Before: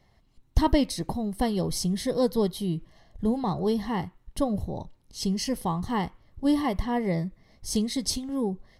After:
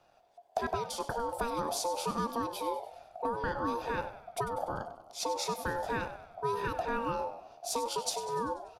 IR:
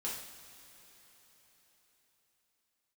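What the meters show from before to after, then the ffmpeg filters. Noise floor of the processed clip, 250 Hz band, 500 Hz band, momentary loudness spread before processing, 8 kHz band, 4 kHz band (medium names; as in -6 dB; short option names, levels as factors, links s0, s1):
-64 dBFS, -15.5 dB, -5.0 dB, 8 LU, -3.5 dB, -6.0 dB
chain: -filter_complex "[0:a]bandreject=f=50:t=h:w=6,bandreject=f=100:t=h:w=6,bandreject=f=150:t=h:w=6,bandreject=f=200:t=h:w=6,acompressor=threshold=0.0447:ratio=6,asplit=2[s0][s1];[s1]asplit=6[s2][s3][s4][s5][s6][s7];[s2]adelay=97,afreqshift=-63,volume=0.237[s8];[s3]adelay=194,afreqshift=-126,volume=0.127[s9];[s4]adelay=291,afreqshift=-189,volume=0.0692[s10];[s5]adelay=388,afreqshift=-252,volume=0.0372[s11];[s6]adelay=485,afreqshift=-315,volume=0.0202[s12];[s7]adelay=582,afreqshift=-378,volume=0.0108[s13];[s8][s9][s10][s11][s12][s13]amix=inputs=6:normalize=0[s14];[s0][s14]amix=inputs=2:normalize=0,aeval=exprs='val(0)*sin(2*PI*700*n/s)':c=same"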